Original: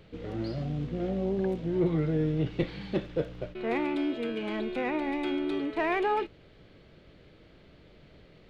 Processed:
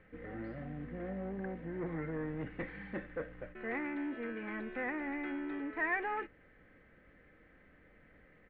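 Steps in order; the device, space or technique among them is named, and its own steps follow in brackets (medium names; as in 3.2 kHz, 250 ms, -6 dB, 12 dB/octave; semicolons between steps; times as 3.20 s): comb 3.9 ms, depth 41%; overdriven synthesiser ladder filter (saturation -23.5 dBFS, distortion -16 dB; four-pole ladder low-pass 2 kHz, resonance 70%); trim +2.5 dB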